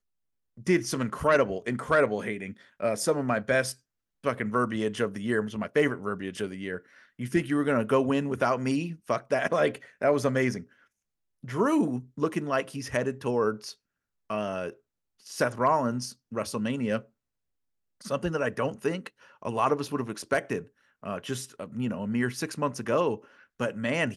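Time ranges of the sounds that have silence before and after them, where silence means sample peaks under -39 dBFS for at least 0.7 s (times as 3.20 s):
11.44–17.01 s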